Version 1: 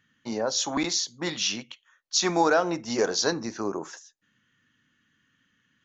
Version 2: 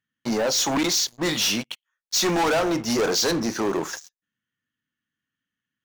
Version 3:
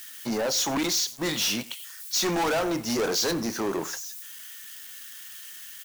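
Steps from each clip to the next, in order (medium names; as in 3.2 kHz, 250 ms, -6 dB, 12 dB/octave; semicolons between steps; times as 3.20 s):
waveshaping leveller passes 5; trim -7.5 dB
zero-crossing glitches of -27.5 dBFS; delay 96 ms -22 dB; trim -4 dB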